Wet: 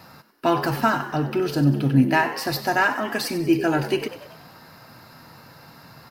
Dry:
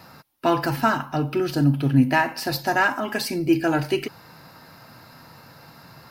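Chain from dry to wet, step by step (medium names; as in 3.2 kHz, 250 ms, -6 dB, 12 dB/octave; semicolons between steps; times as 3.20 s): frequency-shifting echo 95 ms, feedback 55%, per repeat +68 Hz, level -13.5 dB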